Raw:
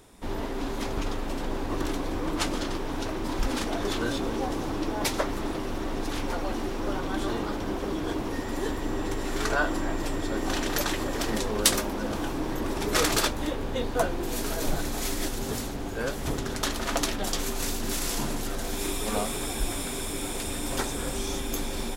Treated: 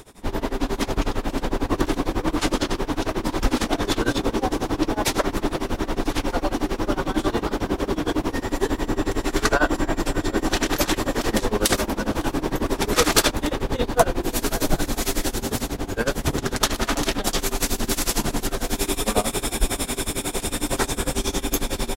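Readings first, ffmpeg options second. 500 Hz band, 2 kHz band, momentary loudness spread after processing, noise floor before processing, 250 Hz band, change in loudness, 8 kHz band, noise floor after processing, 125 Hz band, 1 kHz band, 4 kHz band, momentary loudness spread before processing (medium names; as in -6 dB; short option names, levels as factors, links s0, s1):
+6.0 dB, +5.5 dB, 5 LU, -33 dBFS, +6.0 dB, +6.0 dB, +5.0 dB, -38 dBFS, +6.0 dB, +6.0 dB, +5.5 dB, 6 LU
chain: -filter_complex "[0:a]asplit=2[s0][s1];[s1]adelay=553.9,volume=0.141,highshelf=f=4000:g=-12.5[s2];[s0][s2]amix=inputs=2:normalize=0,areverse,acompressor=mode=upward:threshold=0.0141:ratio=2.5,areverse,tremolo=f=11:d=0.92,alimiter=level_in=3.55:limit=0.891:release=50:level=0:latency=1,volume=0.891"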